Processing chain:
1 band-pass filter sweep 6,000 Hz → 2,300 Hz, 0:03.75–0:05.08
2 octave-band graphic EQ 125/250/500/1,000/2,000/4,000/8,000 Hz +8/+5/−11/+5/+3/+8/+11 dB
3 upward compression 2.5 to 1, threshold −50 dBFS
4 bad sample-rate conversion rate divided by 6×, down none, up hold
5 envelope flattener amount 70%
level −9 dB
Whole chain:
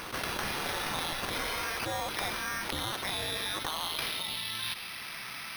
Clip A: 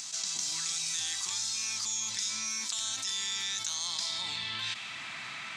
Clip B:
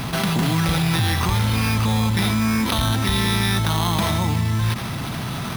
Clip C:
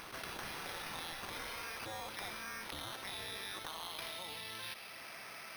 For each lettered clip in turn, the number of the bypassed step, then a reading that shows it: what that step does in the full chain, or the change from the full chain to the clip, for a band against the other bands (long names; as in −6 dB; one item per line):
4, 8 kHz band +21.0 dB
1, 125 Hz band +18.0 dB
2, 125 Hz band −1.5 dB